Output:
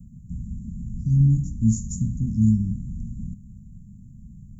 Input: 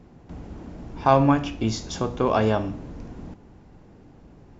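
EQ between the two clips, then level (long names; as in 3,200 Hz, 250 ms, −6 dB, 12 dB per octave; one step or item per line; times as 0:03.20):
Chebyshev band-stop filter 220–6,900 Hz, order 5
+8.0 dB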